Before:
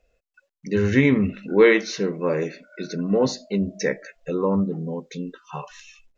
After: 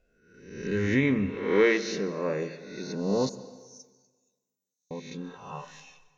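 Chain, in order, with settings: reverse spectral sustain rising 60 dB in 0.81 s; 3.29–4.91 s: inverse Chebyshev high-pass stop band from 1.8 kHz, stop band 70 dB; plate-style reverb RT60 1.4 s, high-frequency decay 0.85×, pre-delay 115 ms, DRR 16 dB; trim -8 dB

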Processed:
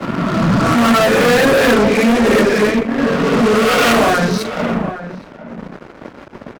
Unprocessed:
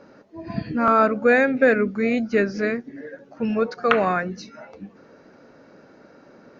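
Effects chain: reverse spectral sustain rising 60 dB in 1.57 s; high-pass 110 Hz 24 dB/octave; treble shelf 5.4 kHz -10 dB; in parallel at +3 dB: upward compressor, threshold -17 dBFS; on the sum: simulated room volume 210 m³, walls mixed, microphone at 1 m; reverb removal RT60 0.68 s; dynamic bell 1.5 kHz, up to -4 dB, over -20 dBFS, Q 0.94; fuzz box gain 17 dB, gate -25 dBFS; expander -23 dBFS; echo from a far wall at 140 m, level -9 dB; three bands expanded up and down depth 40%; trim +3 dB

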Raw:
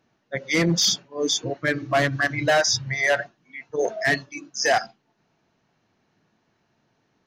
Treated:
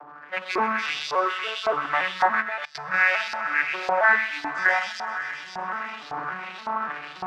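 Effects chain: vocoder on a broken chord major triad, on D3, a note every 286 ms; recorder AGC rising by 30 dB/s; 1.09–1.85 s: static phaser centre 1.2 kHz, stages 8; power-law waveshaper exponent 0.5; treble shelf 2.2 kHz -8.5 dB; feedback echo behind a high-pass 129 ms, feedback 83%, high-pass 1.9 kHz, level -3 dB; 2.42–2.94 s: level held to a coarse grid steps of 23 dB; peaking EQ 1.2 kHz +12 dB 1.2 oct; hum notches 50/100/150 Hz; LFO band-pass saw up 1.8 Hz 790–4600 Hz

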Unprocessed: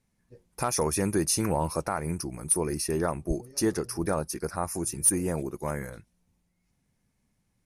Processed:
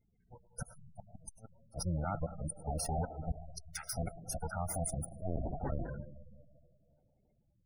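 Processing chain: comb filter that takes the minimum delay 1.4 ms; 1.74–2.29 s: reverse; 3.36–3.93 s: inverse Chebyshev high-pass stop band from 240 Hz, stop band 80 dB; spectral gate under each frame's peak -25 dB strong; tape echo 181 ms, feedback 71%, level -22 dB, low-pass 2.4 kHz; inverted gate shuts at -19 dBFS, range -40 dB; peak limiter -27 dBFS, peak gain reduction 9.5 dB; algorithmic reverb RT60 1.7 s, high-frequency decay 0.5×, pre-delay 55 ms, DRR 10 dB; 5.21–5.88 s: LPC vocoder at 8 kHz pitch kept; spectral gate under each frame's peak -15 dB strong; trim +1 dB

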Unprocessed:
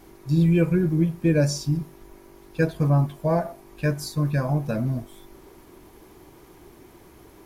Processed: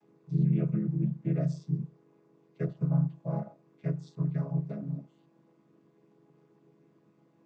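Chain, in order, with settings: vocoder on a held chord minor triad, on C#3; trim -7 dB

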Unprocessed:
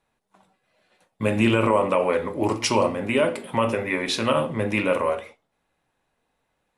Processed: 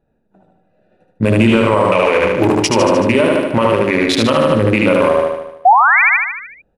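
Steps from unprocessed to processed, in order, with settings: local Wiener filter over 41 samples; 1.86–2.45 s: fifteen-band graphic EQ 250 Hz -6 dB, 2.5 kHz +9 dB, 6.3 kHz +6 dB; 5.65–6.02 s: painted sound rise 690–2500 Hz -17 dBFS; feedback delay 75 ms, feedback 56%, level -3.5 dB; loudness maximiser +15 dB; trim -2 dB

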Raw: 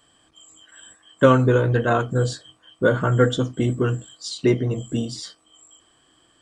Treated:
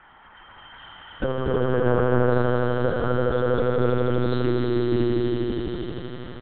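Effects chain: multi-tap echo 53/69/74/114/249/862 ms -5/-16/-14/-10/-12/-19 dB; compression 3:1, threshold -22 dBFS, peak gain reduction 10.5 dB; low-pass that closes with the level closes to 460 Hz, closed at -16 dBFS; doubling 25 ms -11 dB; band noise 630–1900 Hz -49 dBFS; echo with a slow build-up 81 ms, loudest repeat 5, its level -4.5 dB; LPC vocoder at 8 kHz pitch kept; trim -3 dB

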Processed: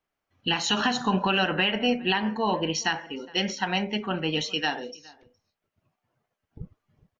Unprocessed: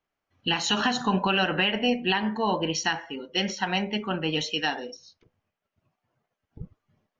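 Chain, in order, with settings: echo from a far wall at 71 m, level -23 dB

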